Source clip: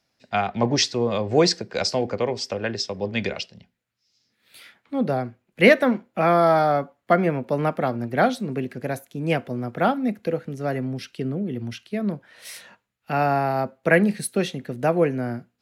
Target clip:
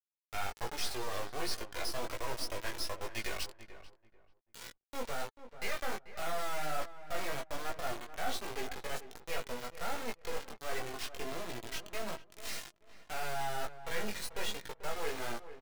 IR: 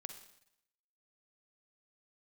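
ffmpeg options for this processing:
-filter_complex "[0:a]acrossover=split=550 7400:gain=0.1 1 0.0708[a][b][c];[a][b][c]amix=inputs=3:normalize=0,bandreject=f=50:t=h:w=6,bandreject=f=100:t=h:w=6,bandreject=f=150:t=h:w=6,areverse,acompressor=threshold=-33dB:ratio=6,areverse,acrusher=bits=4:dc=4:mix=0:aa=0.000001,flanger=delay=17:depth=3.8:speed=1.3,asoftclip=type=tanh:threshold=-32.5dB,flanger=delay=2:depth=1.2:regen=57:speed=0.21:shape=triangular,asplit=2[d][e];[e]adelay=439,lowpass=f=1.5k:p=1,volume=-12dB,asplit=2[f][g];[g]adelay=439,lowpass=f=1.5k:p=1,volume=0.24,asplit=2[h][i];[i]adelay=439,lowpass=f=1.5k:p=1,volume=0.24[j];[d][f][h][j]amix=inputs=4:normalize=0,volume=10.5dB"

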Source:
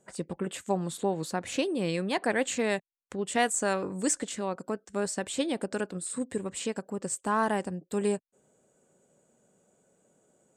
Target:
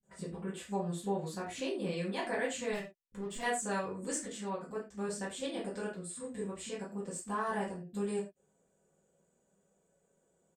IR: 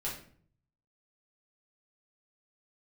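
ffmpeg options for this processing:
-filter_complex "[0:a]asettb=1/sr,asplit=3[a][b][c];[a]atrim=end=2.714[d];[b]atrim=start=2.71:end=3.4,asetpts=PTS-STARTPTS,afade=t=in:d=0.004:c=qsin,afade=t=out:st=0.686:d=0.004:c=qsin,asoftclip=type=hard:threshold=-30dB[e];[c]atrim=start=3.396[f];[d][e]acrossfade=d=0.004:c1=hsin:c2=qsin[g];[g][f]acrossfade=d=0.004:c1=qsin:c2=hsin,acrossover=split=230[h][i];[i]adelay=30[j];[h][j]amix=inputs=2:normalize=0[k];[1:a]atrim=start_sample=2205,atrim=end_sample=6174,asetrate=52920,aresample=44100[l];[k][l]afir=irnorm=-1:irlink=0,volume=-7.5dB"

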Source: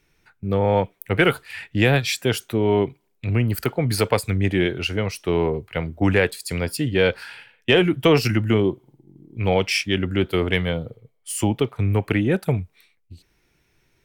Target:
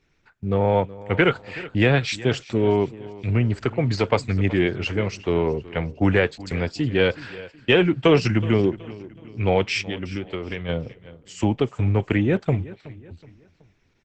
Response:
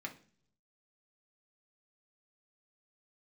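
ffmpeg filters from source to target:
-filter_complex "[0:a]asplit=3[a][b][c];[a]afade=t=out:st=9.81:d=0.02[d];[b]acompressor=threshold=-25dB:ratio=8,afade=t=in:st=9.81:d=0.02,afade=t=out:st=10.68:d=0.02[e];[c]afade=t=in:st=10.68:d=0.02[f];[d][e][f]amix=inputs=3:normalize=0,highshelf=f=7.1k:g=-10.5,asettb=1/sr,asplit=3[g][h][i];[g]atrim=end=6.374[j];[h]atrim=start=6.37:end=6.94,asetpts=PTS-STARTPTS,afade=t=in:d=0.004:c=qsin,afade=t=out:st=0.566:d=0.004:c=qsin,agate=range=-32dB:threshold=-38dB:ratio=16:detection=peak[k];[i]atrim=start=6.936[l];[j][k]acrossfade=d=0.004:c1=hsin:c2=qsin[m];[m][l]acrossfade=d=0.004:c1=qsin:c2=hsin,asplit=3[n][o][p];[n]afade=t=out:st=8.14:d=0.02[q];[o]lowpass=12k,afade=t=in:st=8.14:d=0.02,afade=t=out:st=8.66:d=0.02[r];[p]afade=t=in:st=8.66:d=0.02[s];[q][r][s]amix=inputs=3:normalize=0,aecho=1:1:373|746|1119:0.126|0.0516|0.0212" -ar 48000 -c:a libopus -b:a 12k

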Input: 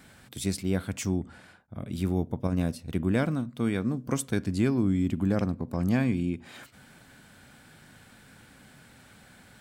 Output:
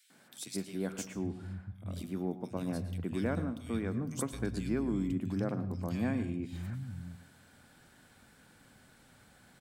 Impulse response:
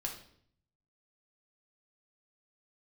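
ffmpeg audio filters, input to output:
-filter_complex "[0:a]acrossover=split=150|2400[a][b][c];[b]adelay=100[d];[a]adelay=790[e];[e][d][c]amix=inputs=3:normalize=0,asplit=2[f][g];[1:a]atrim=start_sample=2205,adelay=110[h];[g][h]afir=irnorm=-1:irlink=0,volume=-13dB[i];[f][i]amix=inputs=2:normalize=0,asettb=1/sr,asplit=3[j][k][l];[j]atrim=end=4.334[m];[k]atrim=start=4.33:end=5.13,asetpts=PTS-STARTPTS,afade=t=in:d=0.004:c=qsin,afade=t=out:st=0.796:d=0.004:c=qsin,aeval=exprs='val(0)+0.0158*(sin(2*PI*60*n/s)+sin(2*PI*2*60*n/s)/2+sin(2*PI*3*60*n/s)/3+sin(2*PI*4*60*n/s)/4+sin(2*PI*5*60*n/s)/5)':c=same[n];[l]atrim=start=5.126[o];[m][n]acrossfade=d=0.004:c1=hsin:c2=qsin[p];[p][o]acrossfade=d=0.004:c1=qsin:c2=hsin,volume=-6dB"

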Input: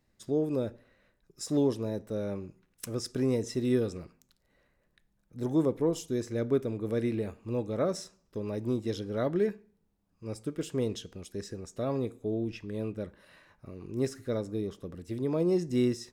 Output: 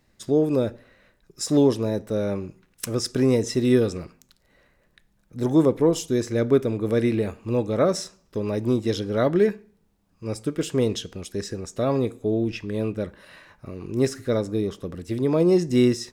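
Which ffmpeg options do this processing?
-af "equalizer=f=2.8k:w=0.3:g=2.5,volume=8dB"

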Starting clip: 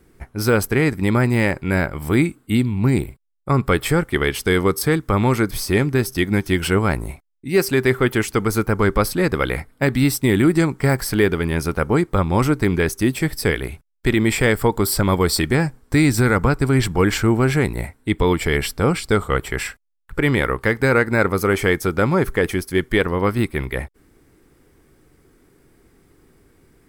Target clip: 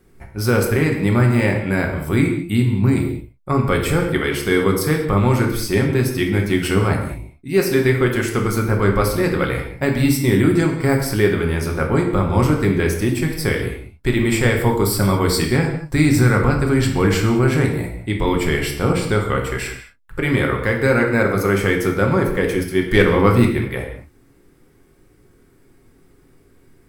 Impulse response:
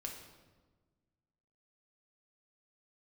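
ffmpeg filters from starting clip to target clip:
-filter_complex "[0:a]asettb=1/sr,asplit=3[a][b][c];[a]atrim=end=22.914[d];[b]atrim=start=22.91:end=23.49,asetpts=PTS-STARTPTS,afade=t=in:d=0.004:c=qsin,afade=t=out:st=0.576:d=0.004:c=qsin,acontrast=36[e];[c]atrim=start=23.486[f];[d][e]acrossfade=d=0.004:c1=hsin:c2=qsin[g];[g][f]acrossfade=d=0.004:c1=qsin:c2=hsin[h];[1:a]atrim=start_sample=2205,afade=t=out:st=0.28:d=0.01,atrim=end_sample=12789[i];[h][i]afir=irnorm=-1:irlink=0,volume=2dB"

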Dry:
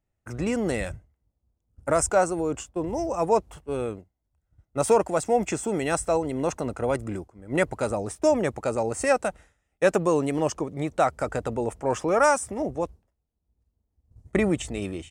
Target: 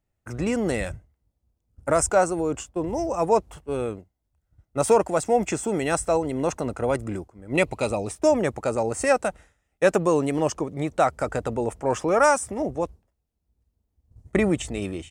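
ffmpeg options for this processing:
-filter_complex "[0:a]asettb=1/sr,asplit=3[a][b][c];[a]atrim=end=7.544[d];[b]atrim=start=7.54:end=8.11,asetpts=PTS-STARTPTS,afade=t=in:d=0.004:c=qsin,afade=t=out:st=0.566:d=0.004:c=qsin,equalizer=f=1.6k:t=o:w=0.33:g=-11,equalizer=f=2.5k:t=o:w=0.33:g=11,equalizer=f=4k:t=o:w=0.33:g=7[e];[c]atrim=start=8.106[f];[d][e]acrossfade=d=0.004:c1=hsin:c2=qsin[g];[g][f]acrossfade=d=0.004:c1=qsin:c2=hsin,volume=1.5dB"

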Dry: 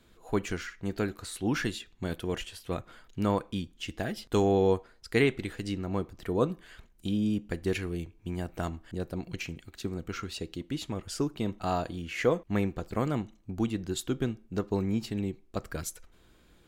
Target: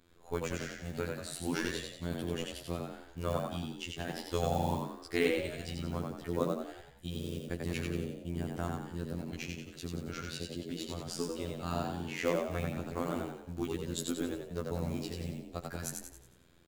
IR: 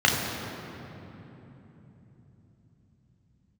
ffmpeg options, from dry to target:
-filter_complex "[0:a]acrusher=bits=7:mode=log:mix=0:aa=0.000001,afftfilt=real='hypot(re,im)*cos(PI*b)':imag='0':win_size=2048:overlap=0.75,asplit=2[a][b];[b]asplit=6[c][d][e][f][g][h];[c]adelay=91,afreqshift=62,volume=-3.5dB[i];[d]adelay=182,afreqshift=124,volume=-10.4dB[j];[e]adelay=273,afreqshift=186,volume=-17.4dB[k];[f]adelay=364,afreqshift=248,volume=-24.3dB[l];[g]adelay=455,afreqshift=310,volume=-31.2dB[m];[h]adelay=546,afreqshift=372,volume=-38.2dB[n];[i][j][k][l][m][n]amix=inputs=6:normalize=0[o];[a][o]amix=inputs=2:normalize=0,adynamicequalizer=threshold=0.00316:dfrequency=3600:dqfactor=0.7:tfrequency=3600:tqfactor=0.7:attack=5:release=100:ratio=0.375:range=1.5:mode=boostabove:tftype=highshelf,volume=-2.5dB"

